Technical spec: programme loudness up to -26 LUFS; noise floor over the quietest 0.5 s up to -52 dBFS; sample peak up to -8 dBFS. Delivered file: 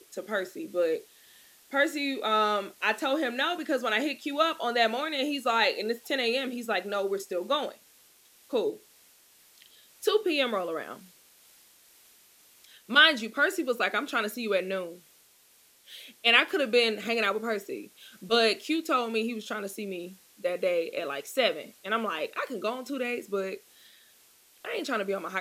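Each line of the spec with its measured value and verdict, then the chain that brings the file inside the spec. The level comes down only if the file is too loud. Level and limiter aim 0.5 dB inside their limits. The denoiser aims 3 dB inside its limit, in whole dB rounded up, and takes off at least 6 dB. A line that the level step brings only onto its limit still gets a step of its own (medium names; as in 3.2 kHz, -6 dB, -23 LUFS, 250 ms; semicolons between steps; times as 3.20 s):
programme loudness -28.0 LUFS: pass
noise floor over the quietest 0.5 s -61 dBFS: pass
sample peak -5.5 dBFS: fail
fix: peak limiter -8.5 dBFS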